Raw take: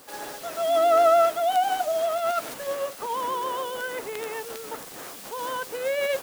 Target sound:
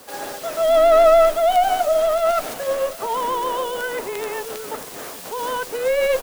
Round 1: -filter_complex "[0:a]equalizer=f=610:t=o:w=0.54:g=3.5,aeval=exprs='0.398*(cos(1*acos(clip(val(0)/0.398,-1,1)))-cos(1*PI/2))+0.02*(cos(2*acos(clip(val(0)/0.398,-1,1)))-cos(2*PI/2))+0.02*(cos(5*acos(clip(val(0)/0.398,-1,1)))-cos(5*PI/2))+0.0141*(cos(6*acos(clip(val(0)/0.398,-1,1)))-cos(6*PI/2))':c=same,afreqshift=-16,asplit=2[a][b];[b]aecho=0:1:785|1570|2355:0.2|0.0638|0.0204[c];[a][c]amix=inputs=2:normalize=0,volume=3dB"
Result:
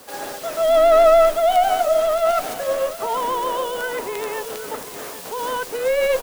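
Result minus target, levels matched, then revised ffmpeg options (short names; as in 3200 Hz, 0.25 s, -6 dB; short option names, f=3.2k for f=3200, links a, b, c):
echo-to-direct +6.5 dB
-filter_complex "[0:a]equalizer=f=610:t=o:w=0.54:g=3.5,aeval=exprs='0.398*(cos(1*acos(clip(val(0)/0.398,-1,1)))-cos(1*PI/2))+0.02*(cos(2*acos(clip(val(0)/0.398,-1,1)))-cos(2*PI/2))+0.02*(cos(5*acos(clip(val(0)/0.398,-1,1)))-cos(5*PI/2))+0.0141*(cos(6*acos(clip(val(0)/0.398,-1,1)))-cos(6*PI/2))':c=same,afreqshift=-16,asplit=2[a][b];[b]aecho=0:1:785|1570:0.0944|0.0302[c];[a][c]amix=inputs=2:normalize=0,volume=3dB"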